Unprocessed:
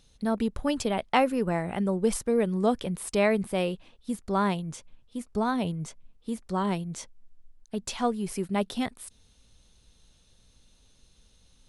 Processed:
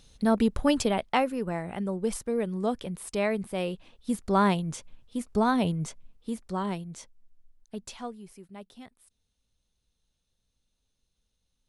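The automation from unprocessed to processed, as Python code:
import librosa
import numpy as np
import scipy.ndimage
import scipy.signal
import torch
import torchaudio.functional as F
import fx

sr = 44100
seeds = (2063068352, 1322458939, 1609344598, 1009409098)

y = fx.gain(x, sr, db=fx.line((0.75, 4.0), (1.3, -4.0), (3.53, -4.0), (4.14, 3.0), (5.84, 3.0), (6.94, -5.5), (7.77, -5.5), (8.39, -17.5)))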